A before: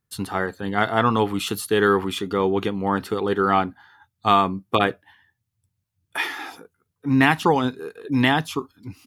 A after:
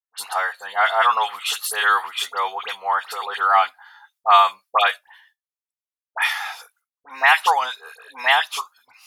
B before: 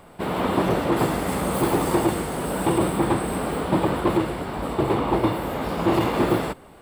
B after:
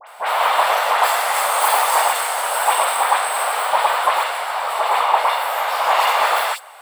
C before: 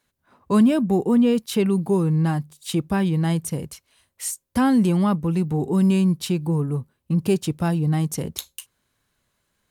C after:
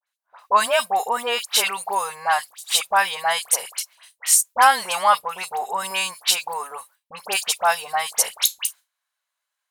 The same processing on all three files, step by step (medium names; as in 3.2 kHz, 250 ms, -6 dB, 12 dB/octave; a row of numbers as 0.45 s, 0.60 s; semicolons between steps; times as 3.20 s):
inverse Chebyshev high-pass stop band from 350 Hz, stop band 40 dB; gate with hold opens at -48 dBFS; phase dispersion highs, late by 70 ms, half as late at 2.1 kHz; peak normalisation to -1.5 dBFS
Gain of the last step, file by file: +5.0 dB, +11.5 dB, +13.0 dB